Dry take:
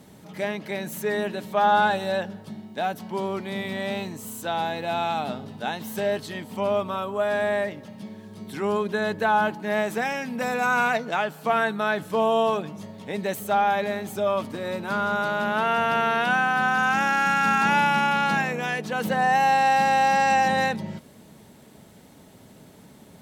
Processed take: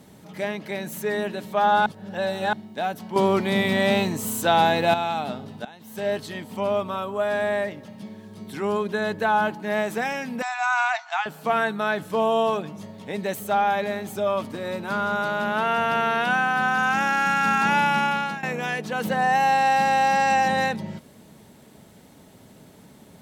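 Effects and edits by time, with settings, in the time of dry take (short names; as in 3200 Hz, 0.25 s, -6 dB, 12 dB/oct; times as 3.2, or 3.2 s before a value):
1.86–2.53 reverse
3.16–4.94 gain +8.5 dB
5.65–6.09 fade in quadratic, from -16.5 dB
10.42–11.26 brick-wall FIR band-pass 670–8000 Hz
17.95–18.43 fade out equal-power, to -17 dB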